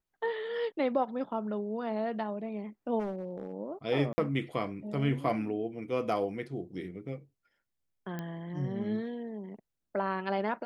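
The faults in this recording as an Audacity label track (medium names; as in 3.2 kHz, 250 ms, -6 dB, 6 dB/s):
2.990000	3.540000	clipped -31 dBFS
4.130000	4.180000	dropout 50 ms
8.190000	8.190000	pop -24 dBFS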